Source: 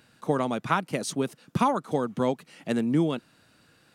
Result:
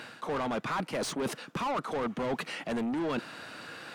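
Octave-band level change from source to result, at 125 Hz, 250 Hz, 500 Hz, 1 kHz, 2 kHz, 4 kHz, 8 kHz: -10.0 dB, -7.0 dB, -5.0 dB, -5.0 dB, -1.0 dB, 0.0 dB, -3.5 dB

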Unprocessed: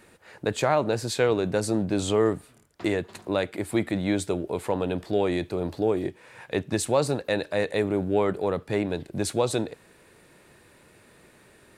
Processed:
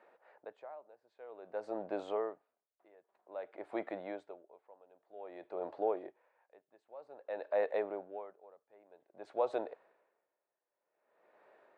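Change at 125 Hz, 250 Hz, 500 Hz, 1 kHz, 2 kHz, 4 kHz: under -35 dB, -22.0 dB, -13.5 dB, -12.0 dB, -18.5 dB, under -25 dB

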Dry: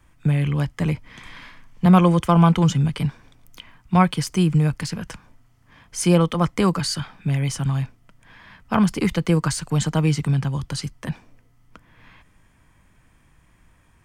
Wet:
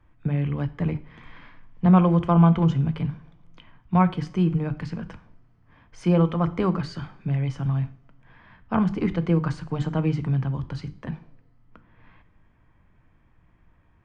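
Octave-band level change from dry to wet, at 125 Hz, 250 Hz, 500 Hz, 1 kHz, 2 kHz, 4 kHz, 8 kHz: -3.0 dB, -2.5 dB, -3.5 dB, -4.0 dB, -7.5 dB, -13.5 dB, under -20 dB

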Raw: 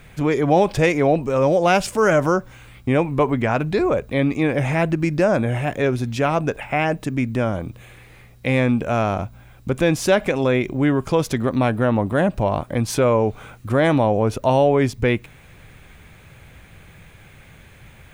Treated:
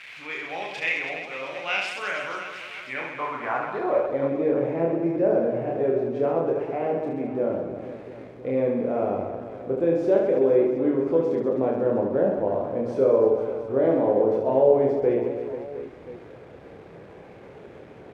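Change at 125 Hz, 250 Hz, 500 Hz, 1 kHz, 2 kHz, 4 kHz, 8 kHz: -15.0 dB, -6.5 dB, -2.0 dB, -8.0 dB, -6.5 dB, no reading, under -15 dB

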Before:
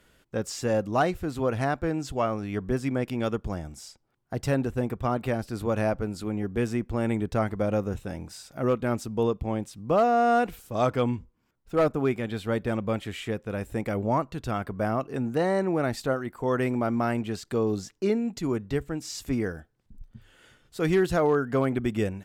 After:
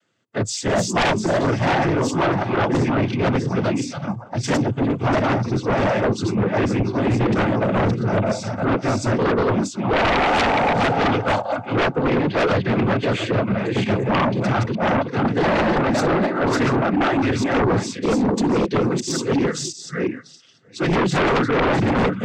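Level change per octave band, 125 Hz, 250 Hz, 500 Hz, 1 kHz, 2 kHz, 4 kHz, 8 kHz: +8.5 dB, +8.0 dB, +6.0 dB, +8.5 dB, +12.0 dB, +13.5 dB, +11.0 dB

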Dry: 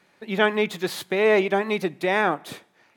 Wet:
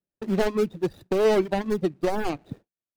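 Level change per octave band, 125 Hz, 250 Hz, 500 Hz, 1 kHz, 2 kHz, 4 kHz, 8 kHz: +2.0 dB, +1.0 dB, -1.5 dB, -5.5 dB, -11.5 dB, -7.5 dB, -3.5 dB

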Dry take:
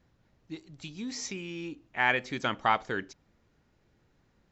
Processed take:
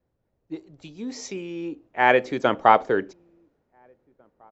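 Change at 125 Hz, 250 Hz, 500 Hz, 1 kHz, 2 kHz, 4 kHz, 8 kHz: +3.0 dB, +7.5 dB, +14.0 dB, +10.0 dB, +4.0 dB, +1.0 dB, no reading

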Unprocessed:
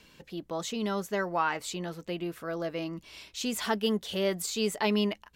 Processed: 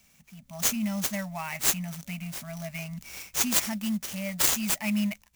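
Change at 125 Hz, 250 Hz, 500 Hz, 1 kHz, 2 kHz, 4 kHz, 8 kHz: +3.5 dB, +1.5 dB, -10.5 dB, -5.5 dB, +1.0 dB, +2.0 dB, +11.5 dB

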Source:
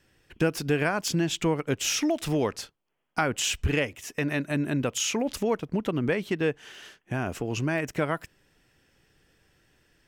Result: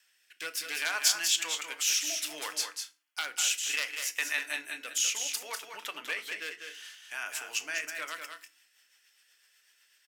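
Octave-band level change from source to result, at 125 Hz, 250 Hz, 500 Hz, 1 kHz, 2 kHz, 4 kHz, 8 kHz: under -40 dB, -27.5 dB, -19.5 dB, -9.0 dB, -1.0 dB, +2.5 dB, +3.5 dB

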